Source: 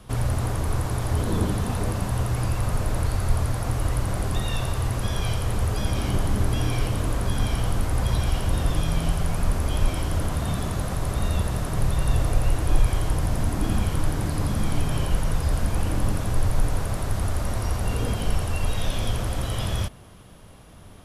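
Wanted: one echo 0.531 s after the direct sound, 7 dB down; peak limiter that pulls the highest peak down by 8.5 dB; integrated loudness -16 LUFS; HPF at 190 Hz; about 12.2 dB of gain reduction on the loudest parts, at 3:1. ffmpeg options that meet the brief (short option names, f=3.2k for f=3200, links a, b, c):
-af "highpass=190,acompressor=threshold=-42dB:ratio=3,alimiter=level_in=11.5dB:limit=-24dB:level=0:latency=1,volume=-11.5dB,aecho=1:1:531:0.447,volume=28dB"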